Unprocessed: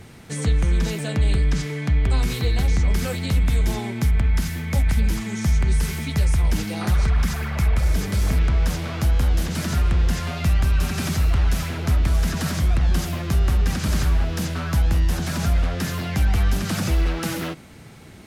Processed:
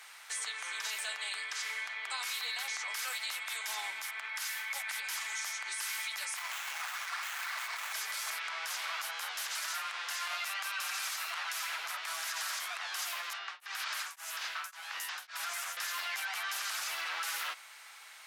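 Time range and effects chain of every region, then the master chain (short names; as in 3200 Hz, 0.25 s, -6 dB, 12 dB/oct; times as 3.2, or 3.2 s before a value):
6.37–7.93 HPF 380 Hz 24 dB/oct + tilt +4.5 dB/oct + running maximum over 9 samples
13.33–15.77 three bands offset in time mids, lows, highs 60/270 ms, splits 580/5400 Hz + beating tremolo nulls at 1.8 Hz
whole clip: HPF 990 Hz 24 dB/oct; limiter -27.5 dBFS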